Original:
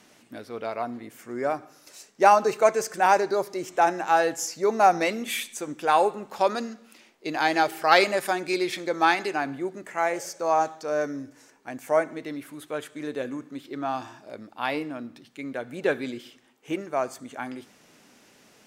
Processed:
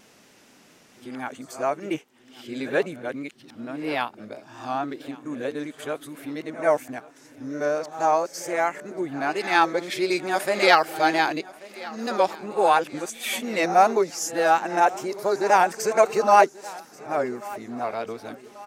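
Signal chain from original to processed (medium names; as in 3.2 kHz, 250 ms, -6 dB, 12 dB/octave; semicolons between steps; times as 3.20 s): reverse the whole clip; on a send: feedback delay 1136 ms, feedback 50%, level -20.5 dB; on the sum: vibrato 4.4 Hz 42 cents; pre-echo 87 ms -17 dB; trim +1.5 dB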